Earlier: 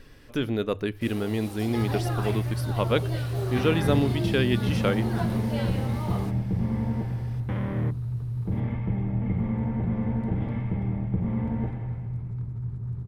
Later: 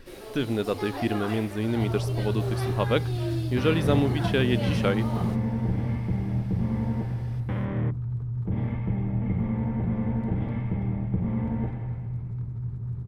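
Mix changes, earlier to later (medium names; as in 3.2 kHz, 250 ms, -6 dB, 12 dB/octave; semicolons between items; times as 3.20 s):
first sound: entry -0.95 s; master: add treble shelf 10 kHz -5 dB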